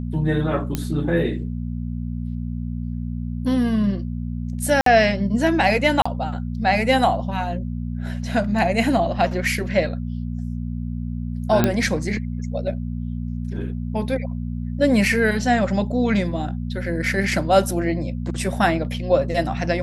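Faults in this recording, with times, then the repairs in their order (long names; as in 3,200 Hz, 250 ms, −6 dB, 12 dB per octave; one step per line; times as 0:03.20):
mains hum 60 Hz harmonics 4 −27 dBFS
0:00.75: click −9 dBFS
0:04.81–0:04.86: drop-out 53 ms
0:06.02–0:06.05: drop-out 35 ms
0:11.64: click −4 dBFS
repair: click removal
hum removal 60 Hz, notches 4
repair the gap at 0:04.81, 53 ms
repair the gap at 0:06.02, 35 ms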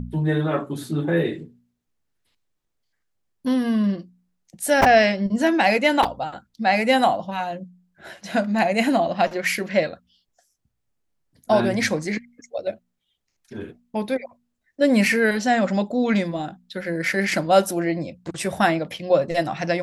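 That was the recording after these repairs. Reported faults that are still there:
none of them is left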